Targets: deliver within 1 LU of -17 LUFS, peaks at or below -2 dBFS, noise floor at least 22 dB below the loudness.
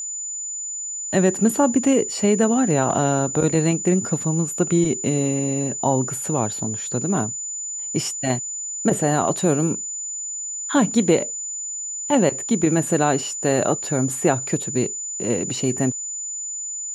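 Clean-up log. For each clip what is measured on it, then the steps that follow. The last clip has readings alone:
tick rate 40 per s; steady tone 7 kHz; tone level -27 dBFS; loudness -21.5 LUFS; peak level -5.0 dBFS; loudness target -17.0 LUFS
-> de-click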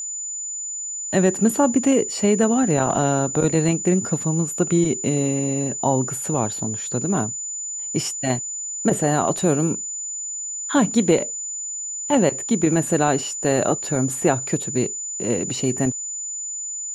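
tick rate 0 per s; steady tone 7 kHz; tone level -27 dBFS
-> band-stop 7 kHz, Q 30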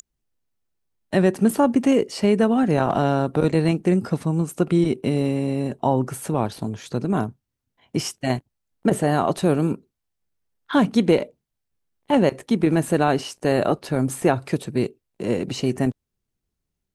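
steady tone not found; loudness -22.0 LUFS; peak level -5.5 dBFS; loudness target -17.0 LUFS
-> trim +5 dB; peak limiter -2 dBFS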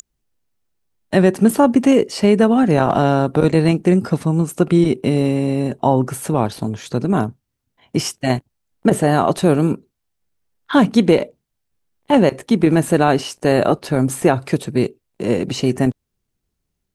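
loudness -17.0 LUFS; peak level -2.0 dBFS; noise floor -76 dBFS

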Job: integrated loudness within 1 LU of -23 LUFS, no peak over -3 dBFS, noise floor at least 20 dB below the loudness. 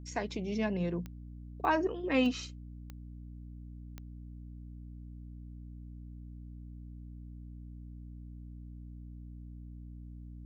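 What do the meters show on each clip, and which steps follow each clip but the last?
clicks found 5; hum 60 Hz; highest harmonic 300 Hz; hum level -44 dBFS; loudness -39.0 LUFS; peak level -15.5 dBFS; loudness target -23.0 LUFS
-> de-click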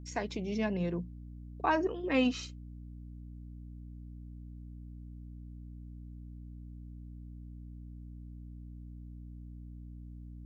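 clicks found 0; hum 60 Hz; highest harmonic 300 Hz; hum level -44 dBFS
-> de-hum 60 Hz, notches 5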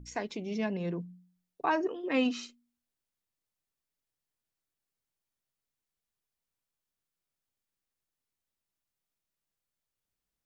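hum not found; loudness -33.0 LUFS; peak level -15.5 dBFS; loudness target -23.0 LUFS
-> trim +10 dB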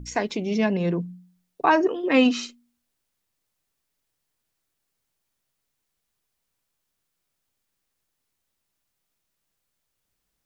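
loudness -23.0 LUFS; peak level -5.5 dBFS; noise floor -79 dBFS

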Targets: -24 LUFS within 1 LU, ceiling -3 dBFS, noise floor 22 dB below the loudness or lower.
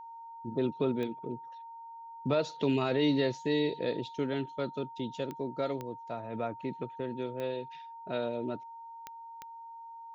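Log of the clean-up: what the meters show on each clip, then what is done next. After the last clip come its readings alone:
clicks found 6; steady tone 920 Hz; tone level -44 dBFS; loudness -33.5 LUFS; peak level -17.0 dBFS; loudness target -24.0 LUFS
-> de-click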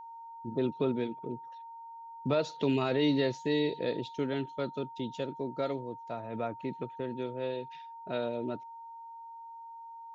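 clicks found 0; steady tone 920 Hz; tone level -44 dBFS
-> band-stop 920 Hz, Q 30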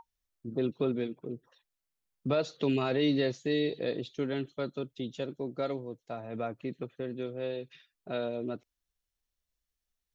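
steady tone not found; loudness -34.0 LUFS; peak level -17.5 dBFS; loudness target -24.0 LUFS
-> trim +10 dB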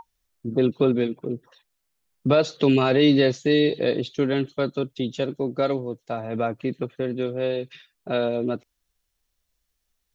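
loudness -24.0 LUFS; peak level -7.5 dBFS; noise floor -77 dBFS

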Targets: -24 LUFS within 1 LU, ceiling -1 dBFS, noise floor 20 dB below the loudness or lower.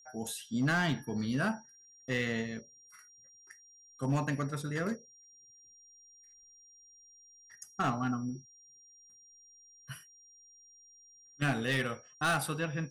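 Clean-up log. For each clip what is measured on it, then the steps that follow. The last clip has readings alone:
clipped samples 0.5%; clipping level -24.0 dBFS; steady tone 5.7 kHz; tone level -57 dBFS; loudness -34.0 LUFS; peak level -24.0 dBFS; loudness target -24.0 LUFS
-> clip repair -24 dBFS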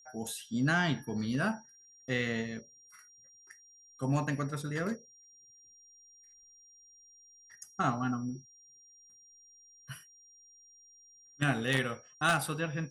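clipped samples 0.0%; steady tone 5.7 kHz; tone level -57 dBFS
-> band-stop 5.7 kHz, Q 30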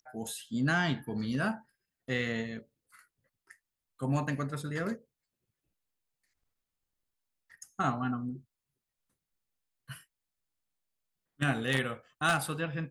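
steady tone not found; loudness -33.0 LUFS; peak level -15.0 dBFS; loudness target -24.0 LUFS
-> trim +9 dB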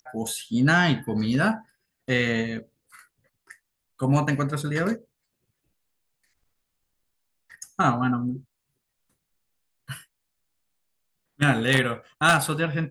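loudness -24.0 LUFS; peak level -6.0 dBFS; noise floor -80 dBFS

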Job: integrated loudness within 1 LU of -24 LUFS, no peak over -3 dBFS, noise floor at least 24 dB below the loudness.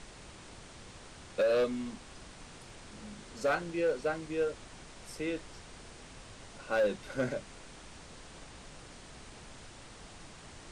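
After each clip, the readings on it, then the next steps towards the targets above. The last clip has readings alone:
clipped samples 0.9%; clipping level -23.5 dBFS; noise floor -52 dBFS; noise floor target -58 dBFS; loudness -33.5 LUFS; peak level -23.5 dBFS; loudness target -24.0 LUFS
-> clip repair -23.5 dBFS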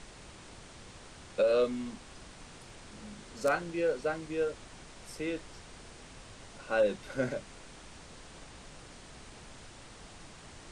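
clipped samples 0.0%; noise floor -52 dBFS; noise floor target -57 dBFS
-> noise print and reduce 6 dB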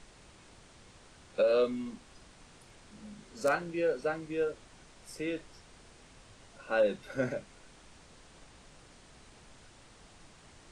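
noise floor -57 dBFS; loudness -32.5 LUFS; peak level -15.0 dBFS; loudness target -24.0 LUFS
-> trim +8.5 dB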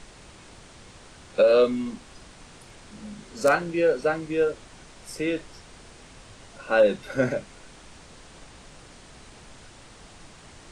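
loudness -24.0 LUFS; peak level -6.5 dBFS; noise floor -49 dBFS

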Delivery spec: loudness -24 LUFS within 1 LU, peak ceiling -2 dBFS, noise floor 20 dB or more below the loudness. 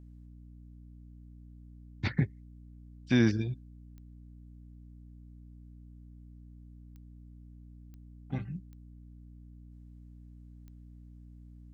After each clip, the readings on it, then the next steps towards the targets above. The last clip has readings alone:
clicks found 5; hum 60 Hz; highest harmonic 300 Hz; hum level -49 dBFS; loudness -32.0 LUFS; peak level -13.0 dBFS; loudness target -24.0 LUFS
-> de-click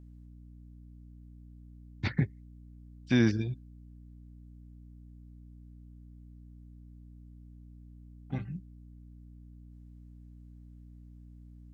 clicks found 0; hum 60 Hz; highest harmonic 300 Hz; hum level -49 dBFS
-> de-hum 60 Hz, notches 5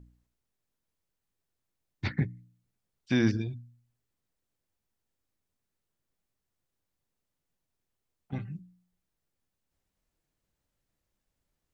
hum not found; loudness -32.0 LUFS; peak level -12.5 dBFS; loudness target -24.0 LUFS
-> trim +8 dB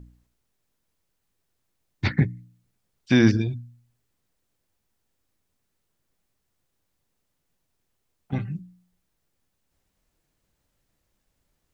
loudness -24.0 LUFS; peak level -4.5 dBFS; noise floor -77 dBFS

